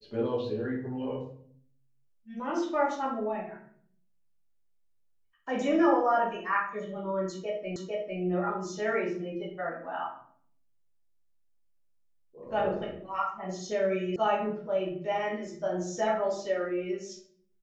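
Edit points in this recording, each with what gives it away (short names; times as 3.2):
7.76 repeat of the last 0.45 s
14.16 sound cut off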